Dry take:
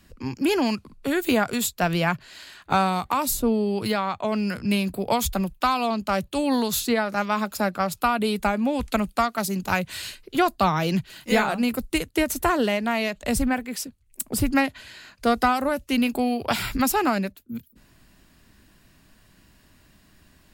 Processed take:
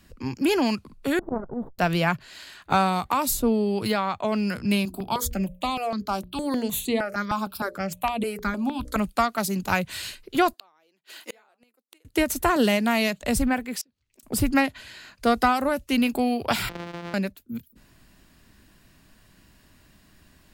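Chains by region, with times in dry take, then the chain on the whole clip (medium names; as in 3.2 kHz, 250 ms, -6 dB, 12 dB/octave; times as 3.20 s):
1.19–1.79 s: comb filter that takes the minimum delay 0.58 ms + inverse Chebyshev low-pass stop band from 2.4 kHz, stop band 50 dB + transformer saturation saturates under 280 Hz
4.85–8.96 s: hum notches 60/120/180/240/300/360/420/480/540/600 Hz + stepped phaser 6.5 Hz 510–5300 Hz
10.53–12.05 s: high-pass 320 Hz 24 dB/octave + inverted gate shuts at -22 dBFS, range -37 dB
12.56–13.21 s: resonant high-pass 150 Hz, resonance Q 1.8 + treble shelf 4.5 kHz +9.5 dB
13.81–14.23 s: high-pass 260 Hz 6 dB/octave + inverted gate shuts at -23 dBFS, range -26 dB + resonant high shelf 7.2 kHz -12 dB, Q 1.5
16.69–17.14 s: sorted samples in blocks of 256 samples + three-band isolator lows -15 dB, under 160 Hz, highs -21 dB, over 4.5 kHz + compression 5:1, threshold -32 dBFS
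whole clip: none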